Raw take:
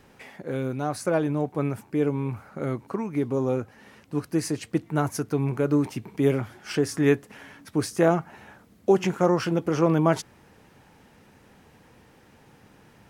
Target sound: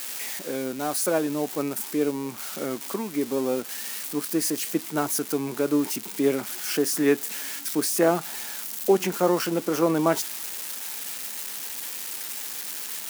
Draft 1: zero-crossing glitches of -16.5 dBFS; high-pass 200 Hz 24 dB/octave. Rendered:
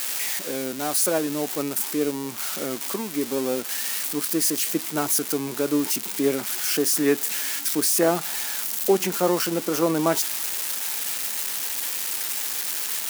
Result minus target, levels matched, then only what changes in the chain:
zero-crossing glitches: distortion +6 dB
change: zero-crossing glitches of -22.5 dBFS

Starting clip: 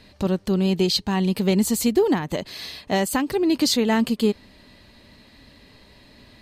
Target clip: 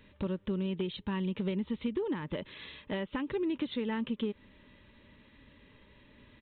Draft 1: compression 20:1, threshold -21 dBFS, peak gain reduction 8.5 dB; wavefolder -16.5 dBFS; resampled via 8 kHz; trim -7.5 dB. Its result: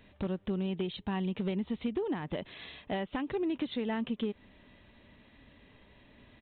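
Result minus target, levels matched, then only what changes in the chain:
1 kHz band +2.5 dB
add after compression: Butterworth band-stop 720 Hz, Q 3.7

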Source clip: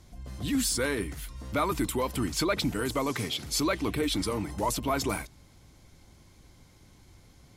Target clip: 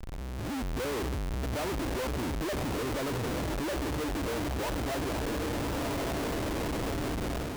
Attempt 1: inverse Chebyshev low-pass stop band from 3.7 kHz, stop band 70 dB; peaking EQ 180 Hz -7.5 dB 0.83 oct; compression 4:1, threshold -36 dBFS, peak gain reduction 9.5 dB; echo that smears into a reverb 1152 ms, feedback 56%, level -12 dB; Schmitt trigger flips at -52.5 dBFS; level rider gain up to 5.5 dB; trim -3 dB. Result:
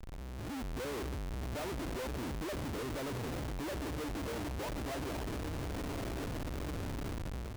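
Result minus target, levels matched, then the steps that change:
compression: peak gain reduction +9.5 dB
remove: compression 4:1, threshold -36 dBFS, peak gain reduction 9.5 dB

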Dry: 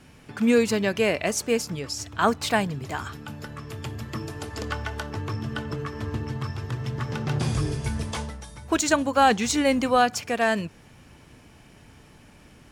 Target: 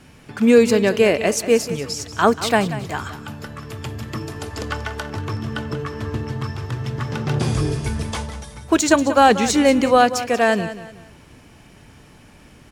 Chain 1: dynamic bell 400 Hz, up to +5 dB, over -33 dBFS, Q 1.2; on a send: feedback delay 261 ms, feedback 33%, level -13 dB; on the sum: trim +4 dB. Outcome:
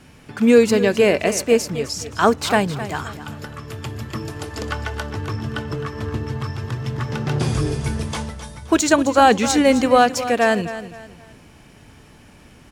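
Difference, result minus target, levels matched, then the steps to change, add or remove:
echo 75 ms late
change: feedback delay 186 ms, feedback 33%, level -13 dB

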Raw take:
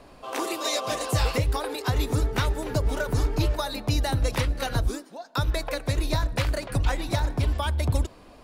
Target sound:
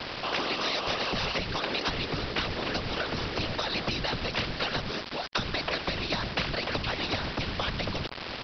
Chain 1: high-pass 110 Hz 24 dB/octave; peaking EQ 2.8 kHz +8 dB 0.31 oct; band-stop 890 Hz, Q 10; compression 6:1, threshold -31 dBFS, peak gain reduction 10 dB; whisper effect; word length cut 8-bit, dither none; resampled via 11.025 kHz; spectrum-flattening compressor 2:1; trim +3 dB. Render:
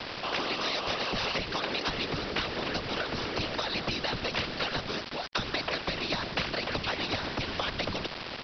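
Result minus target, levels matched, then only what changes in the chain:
125 Hz band -2.5 dB
change: high-pass 53 Hz 24 dB/octave

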